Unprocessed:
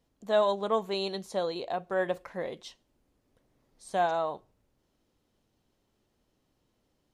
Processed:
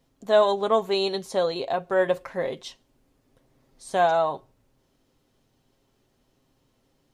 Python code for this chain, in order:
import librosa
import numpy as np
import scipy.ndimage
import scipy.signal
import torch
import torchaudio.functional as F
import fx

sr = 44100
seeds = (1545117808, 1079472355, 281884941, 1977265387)

y = x + 0.38 * np.pad(x, (int(7.5 * sr / 1000.0), 0))[:len(x)]
y = y * librosa.db_to_amplitude(6.0)